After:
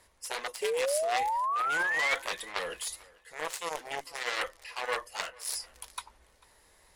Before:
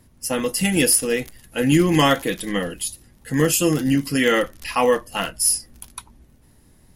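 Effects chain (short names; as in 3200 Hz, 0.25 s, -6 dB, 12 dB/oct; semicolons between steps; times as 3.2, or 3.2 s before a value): added harmonics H 5 -20 dB, 7 -10 dB, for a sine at -3.5 dBFS; reverse; compressor 5:1, threshold -34 dBFS, peak gain reduction 22 dB; reverse; ten-band EQ 125 Hz -10 dB, 250 Hz -10 dB, 500 Hz +10 dB, 1000 Hz +10 dB, 2000 Hz +10 dB, 4000 Hz +8 dB, 8000 Hz +10 dB; painted sound rise, 0.62–2.15, 410–2300 Hz -21 dBFS; tape echo 0.442 s, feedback 33%, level -22.5 dB, low-pass 5000 Hz; gain -8.5 dB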